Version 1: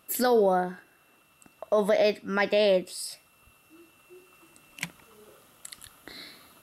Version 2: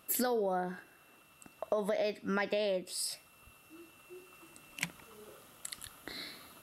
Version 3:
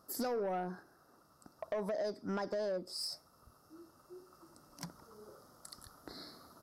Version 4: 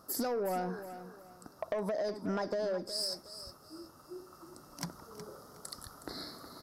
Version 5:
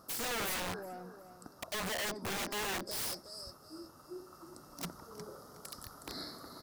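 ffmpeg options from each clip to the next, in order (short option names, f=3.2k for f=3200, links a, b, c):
-af "acompressor=threshold=-29dB:ratio=10"
-af "firequalizer=gain_entry='entry(1300,0);entry(2600,-29);entry(4900,4);entry(7200,-8)':delay=0.05:min_phase=1,asoftclip=type=tanh:threshold=-29.5dB,volume=-1dB"
-af "acompressor=threshold=-39dB:ratio=3,aecho=1:1:366|732|1098:0.251|0.0728|0.0211,volume=6.5dB"
-af "aeval=exprs='(mod(42.2*val(0)+1,2)-1)/42.2':c=same"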